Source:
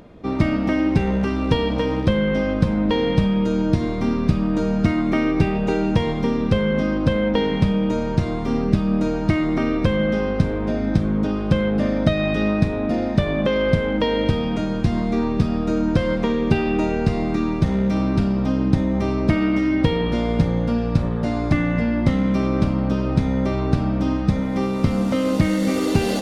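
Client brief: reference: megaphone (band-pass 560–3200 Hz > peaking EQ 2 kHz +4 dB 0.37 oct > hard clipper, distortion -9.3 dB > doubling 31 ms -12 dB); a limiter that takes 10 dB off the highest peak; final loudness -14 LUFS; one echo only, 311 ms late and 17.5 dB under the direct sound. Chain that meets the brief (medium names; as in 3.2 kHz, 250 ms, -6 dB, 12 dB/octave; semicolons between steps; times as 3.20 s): peak limiter -12 dBFS; band-pass 560–3200 Hz; peaking EQ 2 kHz +4 dB 0.37 oct; delay 311 ms -17.5 dB; hard clipper -29 dBFS; doubling 31 ms -12 dB; trim +18 dB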